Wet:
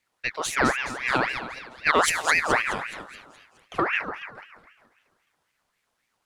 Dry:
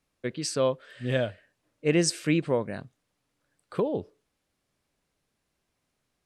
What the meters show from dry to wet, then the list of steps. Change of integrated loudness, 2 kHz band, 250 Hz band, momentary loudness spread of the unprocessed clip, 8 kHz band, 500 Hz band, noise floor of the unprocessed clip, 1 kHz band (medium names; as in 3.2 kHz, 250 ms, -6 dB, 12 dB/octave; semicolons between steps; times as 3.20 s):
+4.0 dB, +14.5 dB, -4.5 dB, 12 LU, +3.0 dB, -2.5 dB, -79 dBFS, +14.5 dB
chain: partial rectifier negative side -3 dB; two-band feedback delay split 810 Hz, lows 147 ms, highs 211 ms, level -8 dB; ring modulator with a swept carrier 1.5 kHz, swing 50%, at 3.8 Hz; trim +6 dB